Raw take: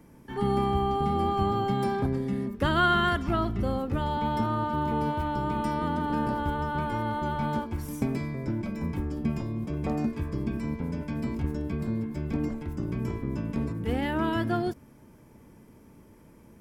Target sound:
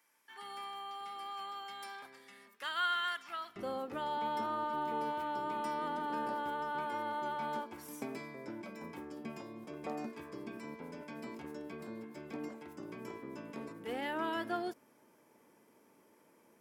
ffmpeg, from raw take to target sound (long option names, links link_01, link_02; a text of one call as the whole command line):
ffmpeg -i in.wav -af "asetnsamples=nb_out_samples=441:pad=0,asendcmd='3.56 highpass f 410',highpass=1500,volume=-5.5dB" out.wav